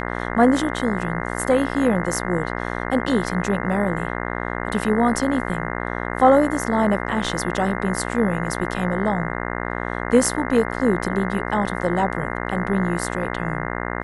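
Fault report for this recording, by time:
buzz 60 Hz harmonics 35 -27 dBFS

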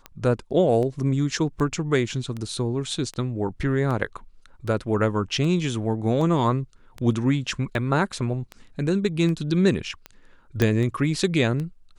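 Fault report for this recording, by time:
tick 78 rpm -20 dBFS
10.62 s: pop -8 dBFS

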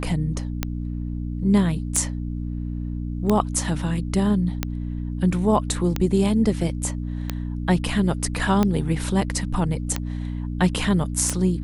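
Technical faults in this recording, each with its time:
hum 60 Hz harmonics 5 -28 dBFS
tick 45 rpm -8 dBFS

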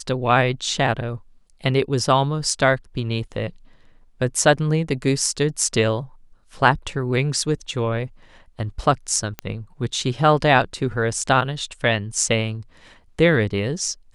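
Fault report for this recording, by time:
9.39 s: pop -12 dBFS

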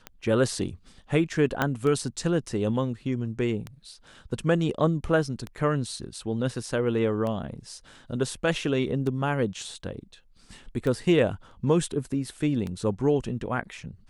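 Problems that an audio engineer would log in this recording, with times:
tick 33 1/3 rpm -20 dBFS
1.62 s: pop -10 dBFS

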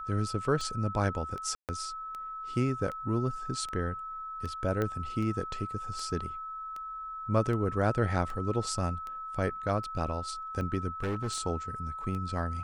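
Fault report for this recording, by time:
tick 78 rpm -27 dBFS
whine 1.3 kHz -37 dBFS
1.55–1.69 s: dropout 138 ms
4.82 s: pop -19 dBFS
11.03–11.38 s: clipped -28 dBFS

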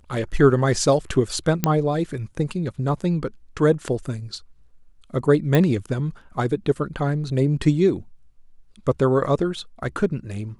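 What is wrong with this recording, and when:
1.64 s: pop -4 dBFS
5.55 s: pop -7 dBFS

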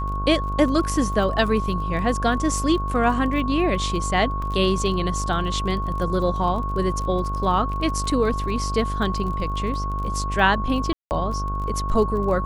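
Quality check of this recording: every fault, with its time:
buzz 50 Hz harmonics 31 -27 dBFS
crackle 28 per s -31 dBFS
whine 1.1 kHz -28 dBFS
4.42 s: dropout 3.1 ms
10.93–11.11 s: dropout 179 ms

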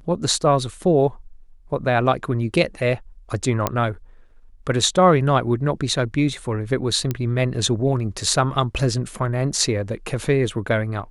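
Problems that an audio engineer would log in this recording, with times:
3.67 s: pop -5 dBFS
7.11 s: pop -10 dBFS

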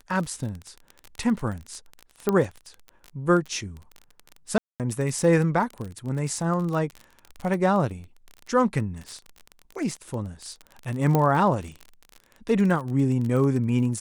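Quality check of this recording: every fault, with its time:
crackle 29 per s -30 dBFS
2.29 s: pop -10 dBFS
4.58–4.80 s: dropout 218 ms
11.15 s: pop -10 dBFS

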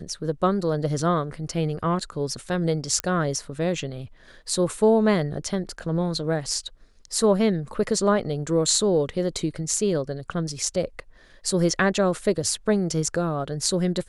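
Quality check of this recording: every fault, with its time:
3.00 s: pop -9 dBFS

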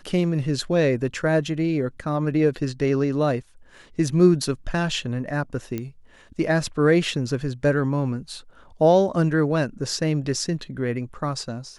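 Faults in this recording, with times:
5.78 s: pop -16 dBFS

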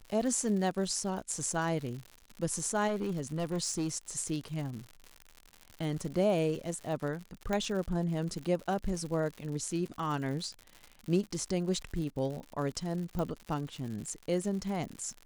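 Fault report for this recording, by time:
crackle 120 per s -38 dBFS
2.87–3.98 s: clipped -28 dBFS
7.53 s: pop -19 dBFS
13.19 s: pop -23 dBFS

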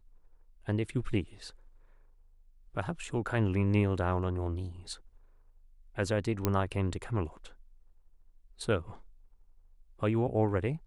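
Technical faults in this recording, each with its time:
6.45 s: pop -12 dBFS

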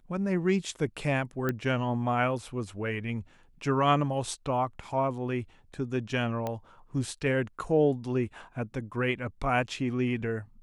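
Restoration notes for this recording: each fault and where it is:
1.49 s: pop -16 dBFS
6.47 s: pop -19 dBFS

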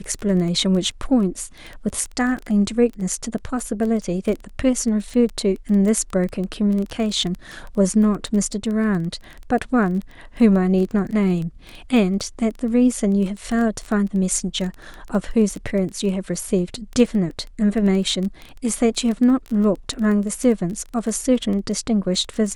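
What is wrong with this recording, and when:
crackle 13 per s -25 dBFS

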